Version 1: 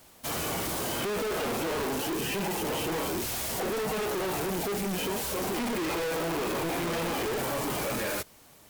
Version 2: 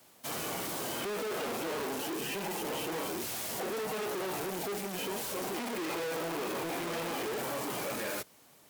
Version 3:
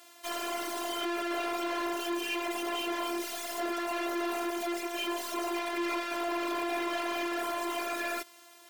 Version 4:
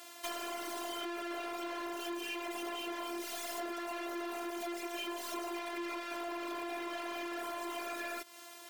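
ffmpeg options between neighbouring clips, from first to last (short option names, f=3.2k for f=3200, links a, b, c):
-filter_complex "[0:a]highpass=130,acrossover=split=290|720|2500[a][b][c][d];[a]asoftclip=type=hard:threshold=-39.5dB[e];[e][b][c][d]amix=inputs=4:normalize=0,volume=-4.5dB"
-filter_complex "[0:a]afftfilt=real='hypot(re,im)*cos(PI*b)':imag='0':win_size=512:overlap=0.75,asplit=2[a][b];[b]highpass=f=720:p=1,volume=18dB,asoftclip=type=tanh:threshold=-20dB[c];[a][c]amix=inputs=2:normalize=0,lowpass=f=5.3k:p=1,volume=-6dB"
-af "acompressor=threshold=-40dB:ratio=10,volume=3.5dB"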